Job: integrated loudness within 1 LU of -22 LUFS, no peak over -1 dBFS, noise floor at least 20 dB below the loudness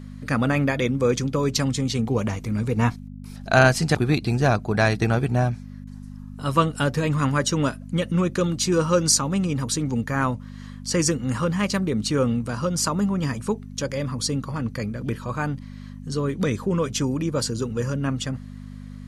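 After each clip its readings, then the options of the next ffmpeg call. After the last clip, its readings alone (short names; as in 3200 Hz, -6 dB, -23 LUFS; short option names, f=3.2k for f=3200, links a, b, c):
hum 50 Hz; harmonics up to 250 Hz; hum level -36 dBFS; loudness -23.5 LUFS; peak -4.5 dBFS; loudness target -22.0 LUFS
-> -af "bandreject=f=50:t=h:w=4,bandreject=f=100:t=h:w=4,bandreject=f=150:t=h:w=4,bandreject=f=200:t=h:w=4,bandreject=f=250:t=h:w=4"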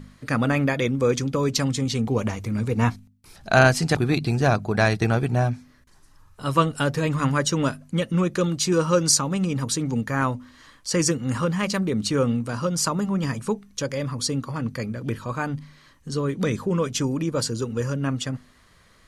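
hum none; loudness -23.5 LUFS; peak -5.0 dBFS; loudness target -22.0 LUFS
-> -af "volume=1.5dB"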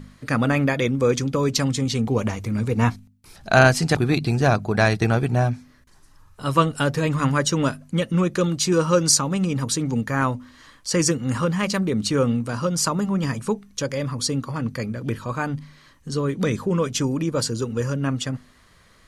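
loudness -22.0 LUFS; peak -3.5 dBFS; noise floor -54 dBFS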